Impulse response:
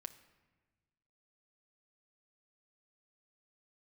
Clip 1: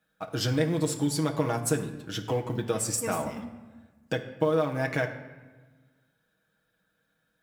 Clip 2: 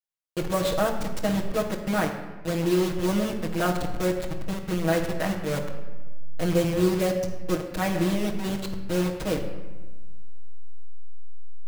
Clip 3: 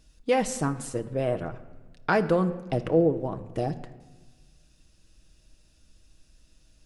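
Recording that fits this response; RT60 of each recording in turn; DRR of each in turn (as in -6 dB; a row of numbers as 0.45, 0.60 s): 3; 1.3, 1.3, 1.3 s; 2.0, -5.5, 7.0 dB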